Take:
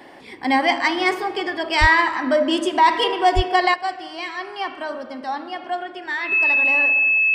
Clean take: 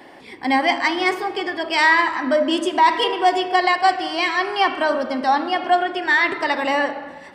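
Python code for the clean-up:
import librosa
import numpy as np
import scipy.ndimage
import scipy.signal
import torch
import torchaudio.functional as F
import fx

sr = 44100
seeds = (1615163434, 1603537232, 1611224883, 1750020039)

y = fx.notch(x, sr, hz=2600.0, q=30.0)
y = fx.highpass(y, sr, hz=140.0, slope=24, at=(1.8, 1.92), fade=0.02)
y = fx.highpass(y, sr, hz=140.0, slope=24, at=(3.35, 3.47), fade=0.02)
y = fx.gain(y, sr, db=fx.steps((0.0, 0.0), (3.74, 9.0)))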